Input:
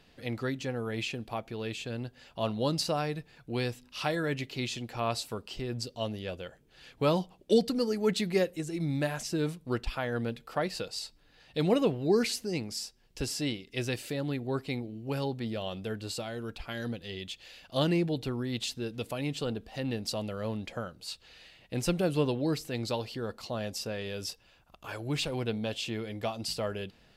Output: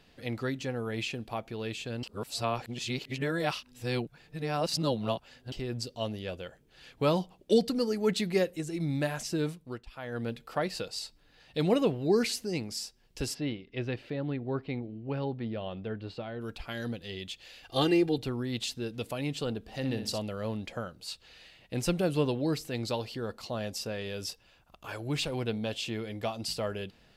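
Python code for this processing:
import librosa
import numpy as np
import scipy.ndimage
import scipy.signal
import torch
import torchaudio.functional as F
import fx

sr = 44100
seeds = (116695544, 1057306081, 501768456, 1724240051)

y = fx.air_absorb(x, sr, metres=330.0, at=(13.33, 16.4), fade=0.02)
y = fx.comb(y, sr, ms=2.5, depth=0.99, at=(17.63, 18.18))
y = fx.room_flutter(y, sr, wall_m=10.4, rt60_s=0.41, at=(19.67, 20.18), fade=0.02)
y = fx.edit(y, sr, fx.reverse_span(start_s=2.03, length_s=3.49),
    fx.fade_down_up(start_s=9.41, length_s=0.92, db=-15.0, fade_s=0.43), tone=tone)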